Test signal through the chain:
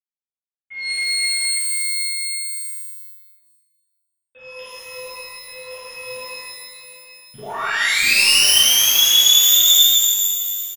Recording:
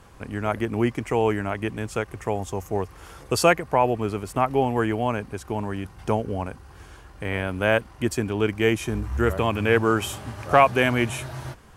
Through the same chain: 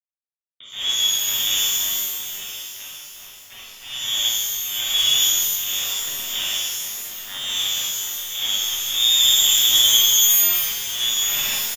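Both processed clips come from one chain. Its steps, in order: treble ducked by the level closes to 350 Hz, closed at -20.5 dBFS; low shelf 120 Hz +2.5 dB; comb 4.1 ms, depth 33%; AGC gain up to 11 dB; auto swell 0.465 s; in parallel at -1 dB: compressor 10:1, threshold -27 dBFS; on the sum: sample gate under -20 dBFS; tapped delay 50/760/767 ms -5.5/-16/-17.5 dB; inverted band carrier 3600 Hz; shimmer reverb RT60 1.5 s, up +12 st, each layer -2 dB, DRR -11.5 dB; gain -15 dB

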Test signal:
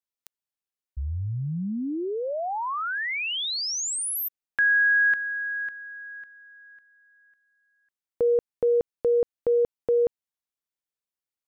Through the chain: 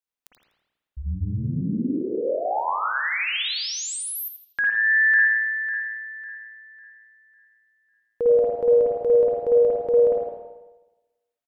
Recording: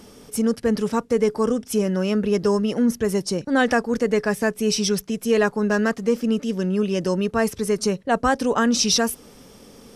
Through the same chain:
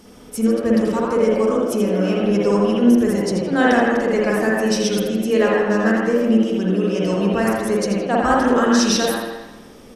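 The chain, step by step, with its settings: on a send: frequency-shifting echo 82 ms, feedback 31%, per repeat +110 Hz, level -9 dB; on the sum: spring tank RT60 1.1 s, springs 50/54 ms, chirp 50 ms, DRR -3.5 dB; gain -2 dB

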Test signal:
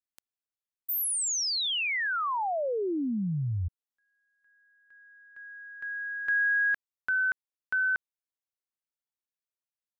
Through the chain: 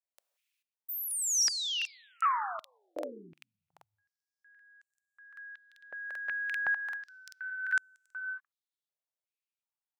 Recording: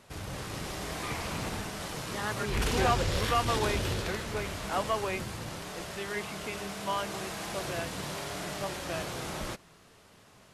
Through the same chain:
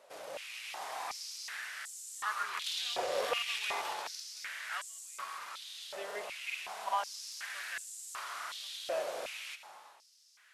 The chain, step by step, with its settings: non-linear reverb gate 0.45 s flat, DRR 10 dB; crackling interface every 0.39 s, samples 2048, repeat, from 0.99; stepped high-pass 2.7 Hz 570–7500 Hz; gain -7 dB

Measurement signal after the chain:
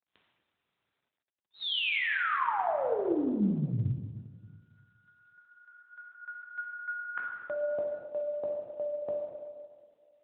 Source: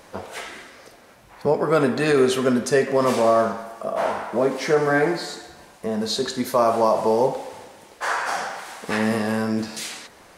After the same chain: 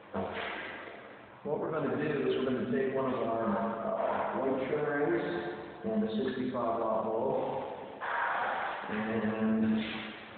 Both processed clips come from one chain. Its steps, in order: reverse; compressor 10:1, threshold -28 dBFS; reverse; plate-style reverb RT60 1.8 s, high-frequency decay 0.8×, DRR -1.5 dB; gain -3 dB; AMR-NB 12.2 kbps 8000 Hz

